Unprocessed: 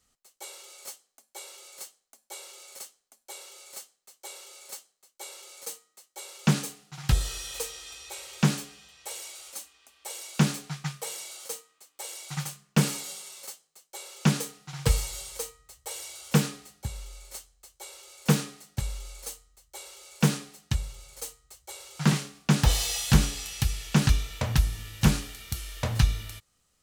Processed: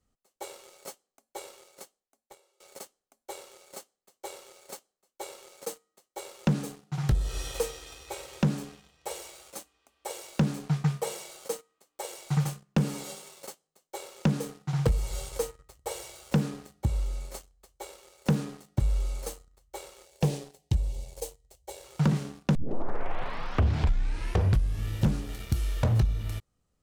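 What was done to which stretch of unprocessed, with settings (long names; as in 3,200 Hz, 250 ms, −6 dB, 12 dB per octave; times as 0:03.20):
0:01.51–0:02.60: fade out, to −19 dB
0:20.05–0:21.84: phaser with its sweep stopped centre 550 Hz, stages 4
0:22.55: tape start 2.33 s
whole clip: tilt shelving filter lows +8 dB, about 1,100 Hz; downward compressor 6 to 1, threshold −23 dBFS; leveller curve on the samples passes 2; level −3 dB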